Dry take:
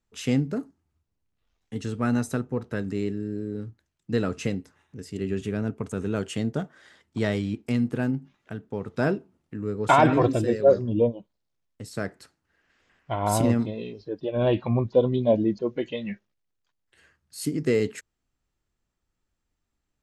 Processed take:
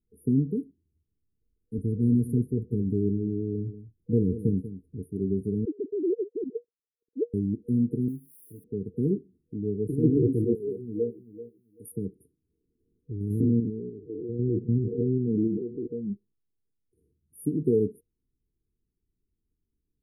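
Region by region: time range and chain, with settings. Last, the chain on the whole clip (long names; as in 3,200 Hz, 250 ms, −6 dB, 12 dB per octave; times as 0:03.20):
0:01.78–0:05.04: low-shelf EQ 92 Hz +11.5 dB + single-tap delay 189 ms −13 dB
0:05.65–0:07.34: three sine waves on the formant tracks + low-shelf EQ 220 Hz +4 dB + volume swells 107 ms
0:08.08–0:08.64: spike at every zero crossing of −32 dBFS + low-shelf EQ 400 Hz −10.5 dB + notch comb filter 210 Hz
0:10.55–0:11.92: spectral tilt +4 dB per octave + repeating echo 387 ms, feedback 16%, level −14 dB
0:13.11–0:15.90: spectrum averaged block by block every 100 ms + high shelf with overshoot 5,900 Hz −11 dB, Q 3
whole clip: high-shelf EQ 8,400 Hz −7.5 dB; brick-wall band-stop 480–9,200 Hz; dynamic equaliser 190 Hz, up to +3 dB, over −43 dBFS, Q 7.9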